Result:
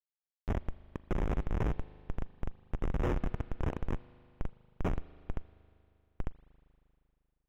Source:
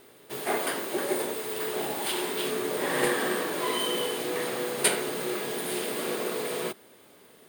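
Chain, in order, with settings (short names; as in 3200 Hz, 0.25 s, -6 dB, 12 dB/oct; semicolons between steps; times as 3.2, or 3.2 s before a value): 1.18–1.72 graphic EQ 125/250/1000/2000/4000/8000 Hz +7/+7/+9/+9/+11/-4 dB; decimation with a swept rate 22×, swing 100% 3.5 Hz; Schmitt trigger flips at -21.5 dBFS; spring tank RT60 2.8 s, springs 39 ms, chirp 75 ms, DRR 19 dB; slew limiter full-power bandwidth 45 Hz; gain +1 dB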